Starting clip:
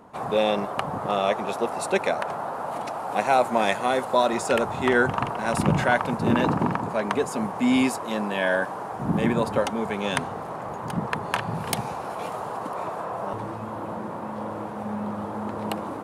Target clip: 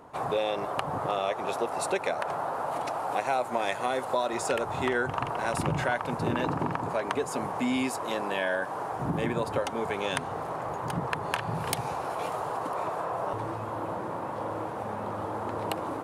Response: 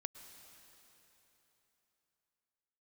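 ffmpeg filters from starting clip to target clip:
-af "equalizer=f=210:w=6:g=-14,acompressor=threshold=-26dB:ratio=3"

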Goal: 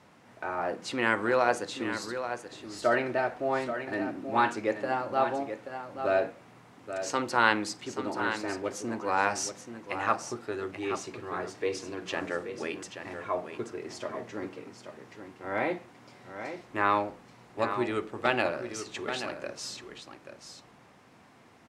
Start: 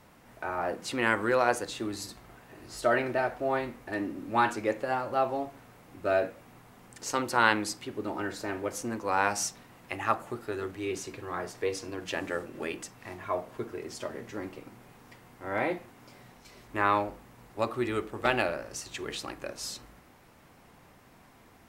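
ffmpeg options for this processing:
-af "highpass=110,lowpass=7.6k,aecho=1:1:831:0.355"

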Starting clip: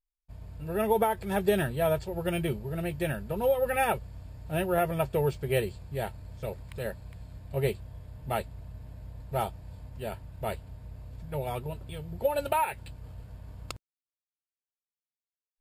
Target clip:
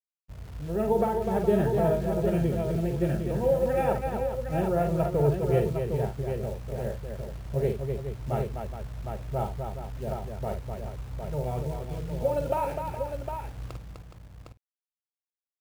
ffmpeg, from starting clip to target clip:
-af "tiltshelf=f=1.3k:g=9.5,acrusher=bits=8:dc=4:mix=0:aa=0.000001,aecho=1:1:48|252|418|758|808:0.473|0.531|0.299|0.501|0.106,volume=-6.5dB"

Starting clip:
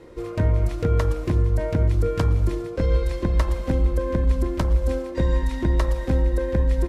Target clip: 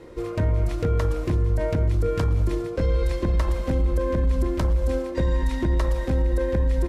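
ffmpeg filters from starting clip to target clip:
-af "alimiter=limit=-16dB:level=0:latency=1:release=31,volume=1.5dB"

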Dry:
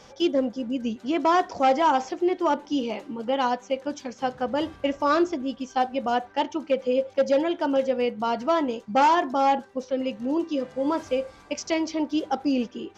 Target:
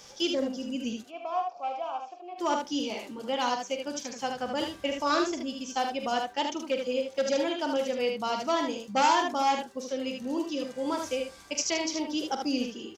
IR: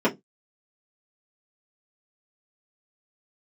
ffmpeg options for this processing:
-filter_complex "[0:a]asplit=3[a][b][c];[a]afade=t=out:st=1.02:d=0.02[d];[b]asplit=3[e][f][g];[e]bandpass=f=730:t=q:w=8,volume=0dB[h];[f]bandpass=f=1.09k:t=q:w=8,volume=-6dB[i];[g]bandpass=f=2.44k:t=q:w=8,volume=-9dB[j];[h][i][j]amix=inputs=3:normalize=0,afade=t=in:st=1.02:d=0.02,afade=t=out:st=2.37:d=0.02[k];[c]afade=t=in:st=2.37:d=0.02[l];[d][k][l]amix=inputs=3:normalize=0,aecho=1:1:45|76:0.316|0.562,crystalizer=i=4.5:c=0,volume=-7dB"

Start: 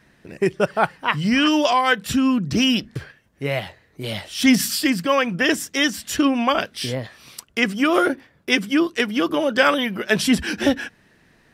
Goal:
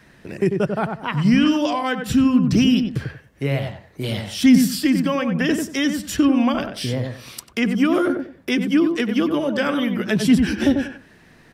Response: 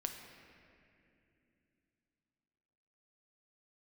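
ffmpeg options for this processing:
-filter_complex "[0:a]asplit=2[a][b];[b]adelay=93,lowpass=f=1.1k:p=1,volume=-5dB,asplit=2[c][d];[d]adelay=93,lowpass=f=1.1k:p=1,volume=0.22,asplit=2[e][f];[f]adelay=93,lowpass=f=1.1k:p=1,volume=0.22[g];[a][c][e][g]amix=inputs=4:normalize=0,acrossover=split=310[h][i];[i]acompressor=threshold=-37dB:ratio=2[j];[h][j]amix=inputs=2:normalize=0,volume=5dB"

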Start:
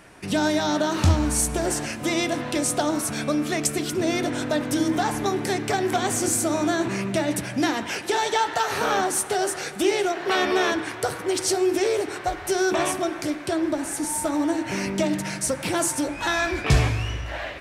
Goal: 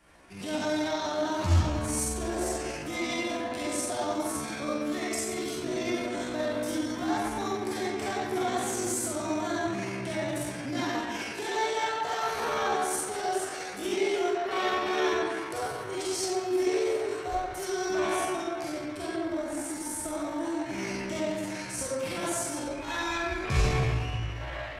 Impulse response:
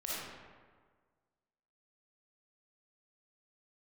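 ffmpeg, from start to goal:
-filter_complex "[1:a]atrim=start_sample=2205,asetrate=74970,aresample=44100[a];[0:a][a]afir=irnorm=-1:irlink=0,adynamicequalizer=threshold=0.00316:dfrequency=120:dqfactor=4:tfrequency=120:tqfactor=4:attack=5:release=100:ratio=0.375:range=2:mode=boostabove:tftype=bell,atempo=0.71,volume=-4.5dB"

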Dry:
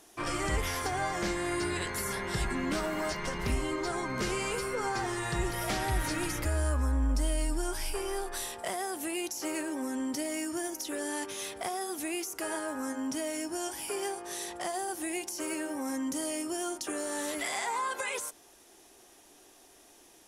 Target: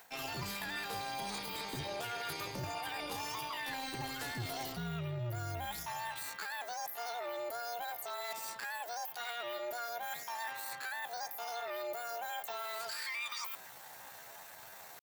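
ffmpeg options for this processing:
-af "highpass=f=45:w=0.5412,highpass=f=45:w=1.3066,areverse,acompressor=threshold=-47dB:ratio=5,areverse,asetrate=74167,aresample=44100,atempo=0.594604,tremolo=f=180:d=0.621,asetrate=59535,aresample=44100,volume=10.5dB"

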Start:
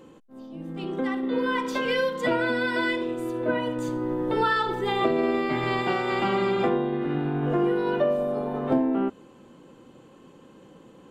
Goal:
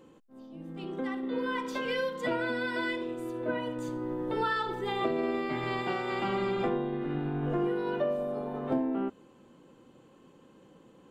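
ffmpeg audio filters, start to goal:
-filter_complex "[0:a]asettb=1/sr,asplit=3[a][b][c];[a]atrim=end=6.284[d];[b]atrim=start=6.28:end=7.67,asetpts=PTS-STARTPTS,afade=t=in:d=0.004:c=qsin,afade=t=out:st=1.386:d=0.004:c=qsin,lowshelf=f=60:g=12[e];[c]atrim=start=7.666[f];[d][e]acrossfade=d=0.004:c1=hsin:c2=qsin[g];[g][f]acrossfade=d=0.004:c1=qsin:c2=hsin,volume=-6.5dB"

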